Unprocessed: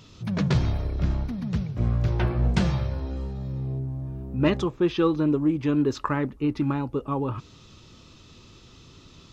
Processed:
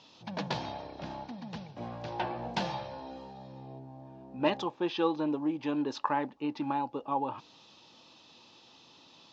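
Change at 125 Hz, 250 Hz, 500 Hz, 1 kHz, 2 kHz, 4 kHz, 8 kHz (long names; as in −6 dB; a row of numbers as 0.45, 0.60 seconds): −19.5 dB, −9.5 dB, −6.5 dB, +1.0 dB, −5.0 dB, −2.5 dB, can't be measured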